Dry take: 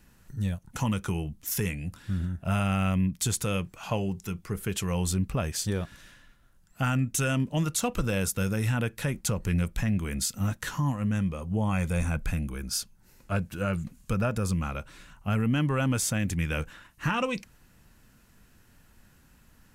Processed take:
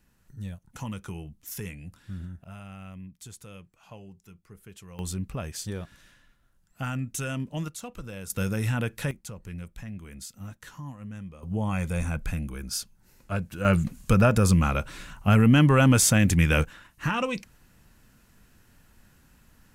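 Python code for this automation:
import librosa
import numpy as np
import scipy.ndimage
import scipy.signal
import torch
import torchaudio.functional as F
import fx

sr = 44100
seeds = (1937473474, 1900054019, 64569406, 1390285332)

y = fx.gain(x, sr, db=fx.steps((0.0, -7.5), (2.44, -17.0), (4.99, -5.0), (7.68, -11.5), (8.3, 0.0), (9.11, -12.0), (11.43, -1.0), (13.65, 8.0), (16.65, 0.5)))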